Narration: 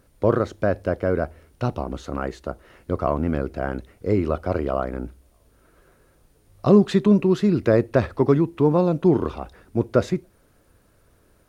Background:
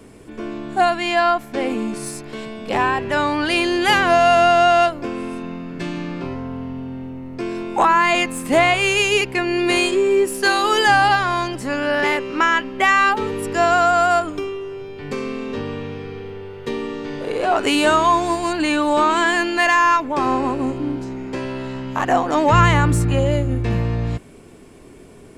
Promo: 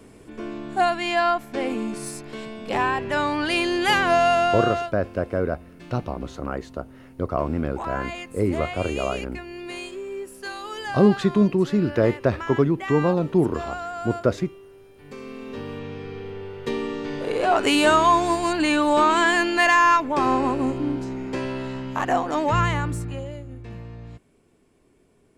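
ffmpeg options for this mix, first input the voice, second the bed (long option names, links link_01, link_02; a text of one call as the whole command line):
ffmpeg -i stem1.wav -i stem2.wav -filter_complex "[0:a]adelay=4300,volume=-2dB[link_01];[1:a]volume=11.5dB,afade=type=out:start_time=4.19:duration=0.73:silence=0.223872,afade=type=in:start_time=14.98:duration=1.46:silence=0.16788,afade=type=out:start_time=21.44:duration=1.9:silence=0.158489[link_02];[link_01][link_02]amix=inputs=2:normalize=0" out.wav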